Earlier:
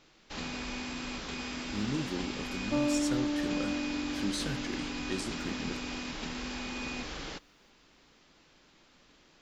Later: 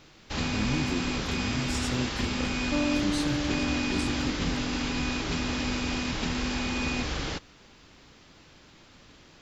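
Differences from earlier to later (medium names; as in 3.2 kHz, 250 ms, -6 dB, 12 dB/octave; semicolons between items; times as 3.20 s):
speech: entry -1.20 s; first sound +7.0 dB; master: add peaking EQ 89 Hz +11.5 dB 1.2 oct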